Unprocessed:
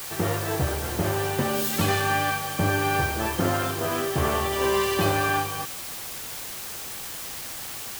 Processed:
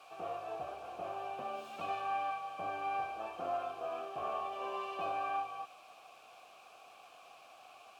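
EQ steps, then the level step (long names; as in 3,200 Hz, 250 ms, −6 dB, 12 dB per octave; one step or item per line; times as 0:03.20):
formant filter a
−3.5 dB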